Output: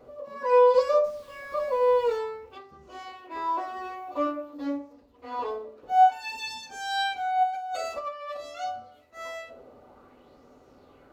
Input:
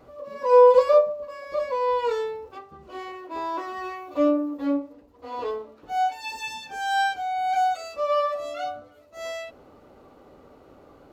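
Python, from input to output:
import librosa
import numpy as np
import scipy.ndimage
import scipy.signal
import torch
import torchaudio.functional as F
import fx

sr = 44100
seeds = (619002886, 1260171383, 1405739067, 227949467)

y = fx.dmg_noise_colour(x, sr, seeds[0], colour='pink', level_db=-54.0, at=(1.03, 2.16), fade=0.02)
y = fx.over_compress(y, sr, threshold_db=-32.0, ratio=-1.0, at=(7.43, 8.37))
y = fx.rev_fdn(y, sr, rt60_s=0.51, lf_ratio=1.2, hf_ratio=0.75, size_ms=24.0, drr_db=8.5)
y = fx.bell_lfo(y, sr, hz=0.52, low_hz=490.0, high_hz=6400.0, db=9)
y = y * 10.0 ** (-5.0 / 20.0)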